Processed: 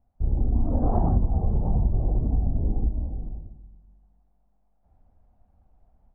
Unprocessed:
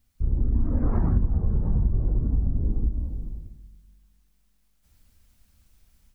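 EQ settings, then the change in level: resonant low-pass 750 Hz, resonance Q 4.9; 0.0 dB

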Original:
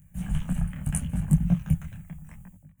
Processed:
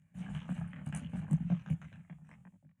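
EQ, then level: band-pass 160–4600 Hz; -6.5 dB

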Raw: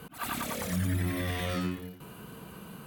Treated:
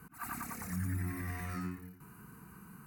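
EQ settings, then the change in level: dynamic bell 710 Hz, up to +7 dB, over -56 dBFS, Q 4.6; static phaser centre 1.4 kHz, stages 4; -5.5 dB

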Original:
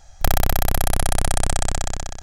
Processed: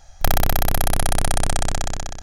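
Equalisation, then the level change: hum notches 50/100/150/200/250/300/350/400/450 Hz; band-stop 7.8 kHz, Q 6.4; +1.0 dB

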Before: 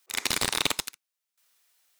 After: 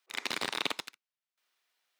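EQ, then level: three-band isolator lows -17 dB, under 180 Hz, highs -13 dB, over 4.6 kHz; -4.5 dB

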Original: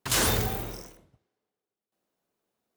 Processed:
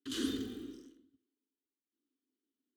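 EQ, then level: vowel filter i; static phaser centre 600 Hz, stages 6; band-stop 5.3 kHz, Q 14; +8.0 dB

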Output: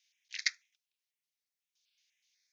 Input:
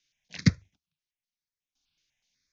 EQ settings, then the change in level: Chebyshev high-pass 1.9 kHz, order 3; +1.5 dB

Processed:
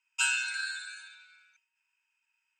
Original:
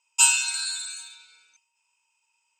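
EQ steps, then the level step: ladder high-pass 1.5 kHz, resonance 70%; treble shelf 3.2 kHz -10.5 dB; treble shelf 8.7 kHz -9 dB; +8.5 dB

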